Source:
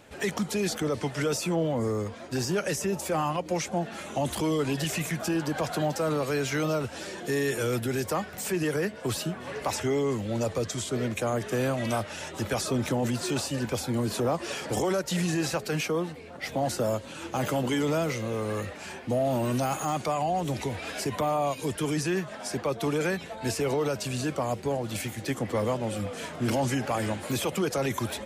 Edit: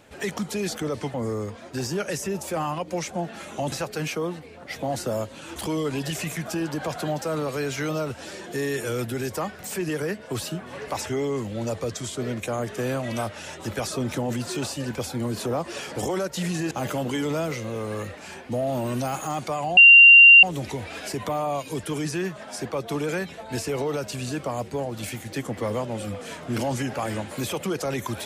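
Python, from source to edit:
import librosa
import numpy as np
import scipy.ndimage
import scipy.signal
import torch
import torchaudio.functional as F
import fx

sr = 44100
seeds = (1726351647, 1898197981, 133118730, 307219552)

y = fx.edit(x, sr, fx.cut(start_s=1.14, length_s=0.58),
    fx.move(start_s=15.45, length_s=1.84, to_s=4.3),
    fx.insert_tone(at_s=20.35, length_s=0.66, hz=2770.0, db=-6.5), tone=tone)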